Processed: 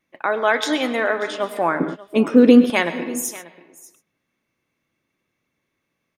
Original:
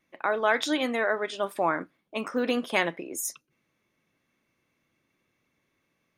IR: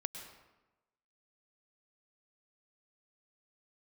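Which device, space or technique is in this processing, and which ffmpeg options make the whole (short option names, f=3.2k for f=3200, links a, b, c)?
keyed gated reverb: -filter_complex "[0:a]asplit=3[a][b][c];[1:a]atrim=start_sample=2205[d];[b][d]afir=irnorm=-1:irlink=0[e];[c]apad=whole_len=272251[f];[e][f]sidechaingate=range=-33dB:threshold=-46dB:ratio=16:detection=peak,volume=2dB[g];[a][g]amix=inputs=2:normalize=0,asettb=1/sr,asplit=3[h][i][j];[h]atrim=end=1.804[k];[i]atrim=start=1.8:end=2.7,asetpts=PTS-STARTPTS,afade=t=in:d=0.004:c=qsin,afade=t=out:st=0.896:d=0.004:c=qsin,lowshelf=f=540:t=q:w=1.5:g=11[l];[j]atrim=start=2.696[m];[k][l]acrossfade=d=0.004:c1=hsin:c2=qsin[n];[n][m]acrossfade=d=0.004:c1=qsin:c2=hsin,aecho=1:1:588:0.119,volume=-1dB"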